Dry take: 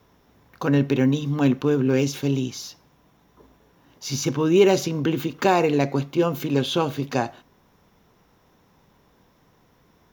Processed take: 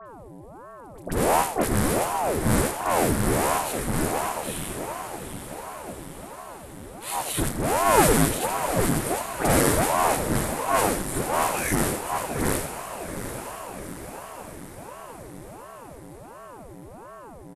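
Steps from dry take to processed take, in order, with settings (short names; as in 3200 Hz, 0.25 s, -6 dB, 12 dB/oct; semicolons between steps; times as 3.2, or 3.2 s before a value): half-waves squared off; band shelf 7000 Hz -9 dB; doubler 48 ms -10.5 dB; on a send: diffused feedback echo 0.462 s, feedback 60%, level -9 dB; on the sum: buzz 400 Hz, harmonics 4, -36 dBFS -8 dB/oct; high shelf 5100 Hz +11.5 dB; speed mistake 78 rpm record played at 45 rpm; dispersion highs, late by 57 ms, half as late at 1500 Hz; ring modulator with a swept carrier 470 Hz, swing 90%, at 1.4 Hz; gain -4.5 dB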